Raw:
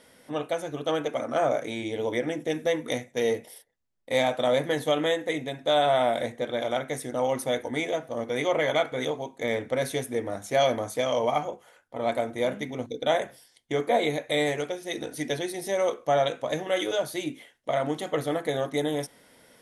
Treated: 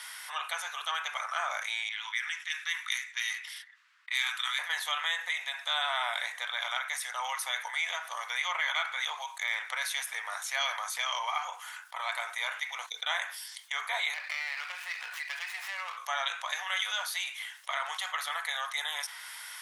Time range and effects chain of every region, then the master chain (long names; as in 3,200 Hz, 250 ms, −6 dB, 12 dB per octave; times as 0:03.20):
0:01.89–0:04.59: high-pass filter 1,300 Hz 24 dB per octave + low-pass that shuts in the quiet parts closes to 1,800 Hz, open at −31.5 dBFS + high-shelf EQ 10,000 Hz +9.5 dB
0:14.14–0:15.97: high shelf with overshoot 3,400 Hz −8 dB, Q 3 + downward compressor 2.5 to 1, threshold −38 dBFS + windowed peak hold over 5 samples
whole clip: Butterworth high-pass 1,000 Hz 36 dB per octave; dynamic equaliser 9,800 Hz, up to −6 dB, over −54 dBFS, Q 0.76; envelope flattener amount 50%